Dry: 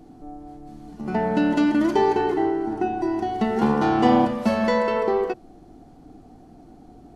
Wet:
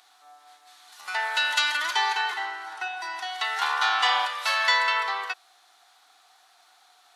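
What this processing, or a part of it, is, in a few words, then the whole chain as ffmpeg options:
headphones lying on a table: -filter_complex "[0:a]highpass=f=1.2k:w=0.5412,highpass=f=1.2k:w=1.3066,equalizer=f=3.7k:t=o:w=0.3:g=9,asettb=1/sr,asplit=3[a][b][c];[a]atrim=end=0.924[d];[b]atrim=start=0.92:end=1.77,asetpts=PTS-STARTPTS,afade=t=in:d=0.004:c=qsin,afade=t=out:st=0.846:d=0.004:c=qsin,highshelf=f=6.3k:g=9.5[e];[c]atrim=start=1.766[f];[d][e]acrossfade=d=0.004:c1=hsin:c2=qsin[g];[g][f]acrossfade=d=0.004:c1=qsin:c2=hsin,volume=8.5dB"

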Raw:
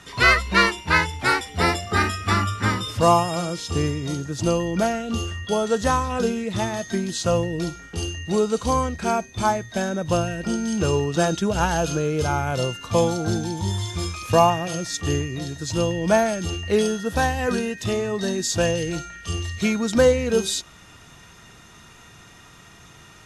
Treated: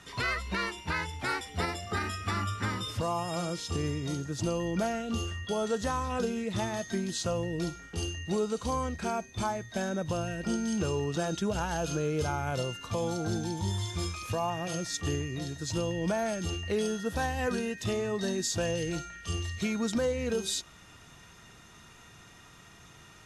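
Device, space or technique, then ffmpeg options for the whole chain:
stacked limiters: -af "alimiter=limit=-10dB:level=0:latency=1:release=295,alimiter=limit=-15dB:level=0:latency=1:release=133,volume=-6dB"

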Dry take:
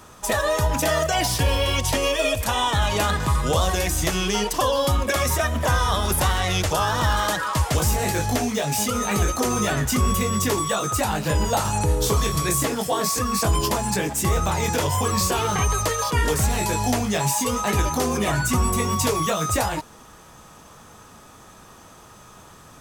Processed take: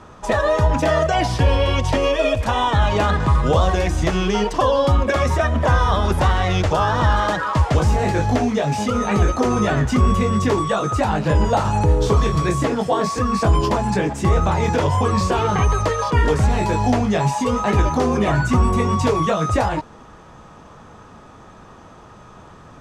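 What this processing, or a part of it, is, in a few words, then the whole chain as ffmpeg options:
through cloth: -af "lowpass=6.4k,highshelf=f=2.5k:g=-12,volume=5.5dB"

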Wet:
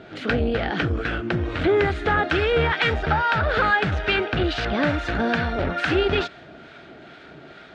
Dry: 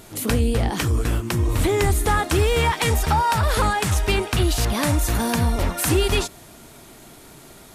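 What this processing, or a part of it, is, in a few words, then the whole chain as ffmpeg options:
guitar amplifier with harmonic tremolo: -filter_complex "[0:a]acrossover=split=890[a][b];[a]aeval=exprs='val(0)*(1-0.5/2+0.5/2*cos(2*PI*2.3*n/s))':c=same[c];[b]aeval=exprs='val(0)*(1-0.5/2-0.5/2*cos(2*PI*2.3*n/s))':c=same[d];[c][d]amix=inputs=2:normalize=0,asoftclip=type=tanh:threshold=-16dB,highpass=92,equalizer=f=110:t=q:w=4:g=-9,equalizer=f=220:t=q:w=4:g=-4,equalizer=f=660:t=q:w=4:g=3,equalizer=f=1k:t=q:w=4:g=-10,equalizer=f=1.5k:t=q:w=4:g=9,lowpass=f=3.6k:w=0.5412,lowpass=f=3.6k:w=1.3066,volume=5dB"

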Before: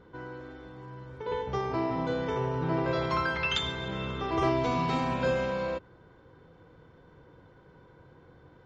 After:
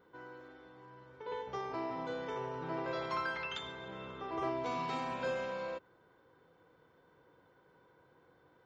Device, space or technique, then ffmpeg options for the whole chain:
through cloth: -filter_complex "[0:a]aemphasis=mode=production:type=riaa,highshelf=f=3.3k:g=-14.5,asettb=1/sr,asplit=3[a][b][c];[a]atrim=end=0.484[d];[b]atrim=start=0.48:end=1.32,asetpts=PTS-STARTPTS,afade=t=in:d=0.004:c=qsin,afade=t=out:st=0.836:d=0.004:c=qsin,lowpass=6.4k[e];[c]atrim=start=1.316[f];[d][e]acrossfade=d=0.004:c1=hsin:c2=qsin[g];[g][f]acrossfade=d=0.004:c1=qsin:c2=hsin,asettb=1/sr,asplit=3[h][i][j];[h]atrim=end=3.434[k];[i]atrim=start=3.43:end=4.66,asetpts=PTS-STARTPTS,afade=t=in:d=0.004:c=qsin,afade=t=out:st=1.226:d=0.004:c=qsin,highshelf=f=2.2k:g=-8.5[l];[j]atrim=start=4.656[m];[k][l]acrossfade=d=0.004:c1=hsin:c2=qsin[n];[n][m]acrossfade=d=0.004:c1=qsin:c2=hsin,volume=-5.5dB"

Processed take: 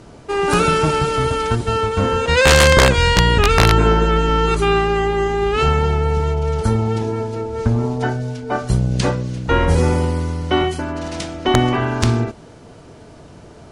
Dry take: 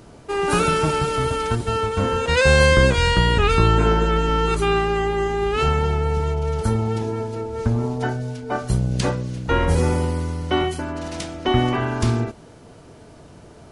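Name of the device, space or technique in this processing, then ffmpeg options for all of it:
overflowing digital effects unit: -af "aeval=exprs='(mod(2*val(0)+1,2)-1)/2':c=same,lowpass=9.3k,volume=3.5dB"

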